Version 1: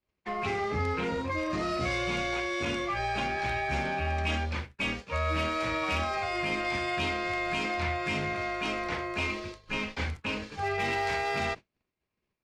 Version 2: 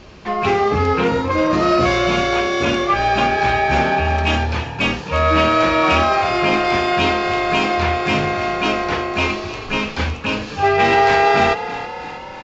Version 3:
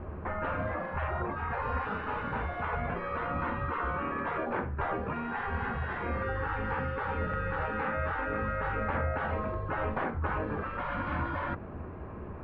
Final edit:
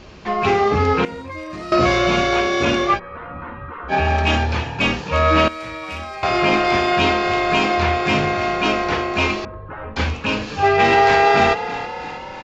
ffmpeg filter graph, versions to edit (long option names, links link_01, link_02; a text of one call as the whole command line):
ffmpeg -i take0.wav -i take1.wav -i take2.wav -filter_complex "[0:a]asplit=2[link_01][link_02];[2:a]asplit=2[link_03][link_04];[1:a]asplit=5[link_05][link_06][link_07][link_08][link_09];[link_05]atrim=end=1.052[link_10];[link_01]atrim=start=1.048:end=1.722[link_11];[link_06]atrim=start=1.718:end=3[link_12];[link_03]atrim=start=2.94:end=3.94[link_13];[link_07]atrim=start=3.88:end=5.482[link_14];[link_02]atrim=start=5.478:end=6.232[link_15];[link_08]atrim=start=6.228:end=9.452[link_16];[link_04]atrim=start=9.448:end=9.962[link_17];[link_09]atrim=start=9.958[link_18];[link_10][link_11]acrossfade=duration=0.004:curve1=hsin:curve2=hsin[link_19];[link_19][link_12]acrossfade=duration=0.004:curve1=hsin:curve2=hsin[link_20];[link_20][link_13]acrossfade=duration=0.06:curve1=tri:curve2=tri[link_21];[link_21][link_14]acrossfade=duration=0.06:curve1=tri:curve2=tri[link_22];[link_22][link_15]acrossfade=duration=0.004:curve1=hsin:curve2=hsin[link_23];[link_23][link_16]acrossfade=duration=0.004:curve1=hsin:curve2=hsin[link_24];[link_24][link_17]acrossfade=duration=0.004:curve1=hsin:curve2=hsin[link_25];[link_25][link_18]acrossfade=duration=0.004:curve1=hsin:curve2=hsin" out.wav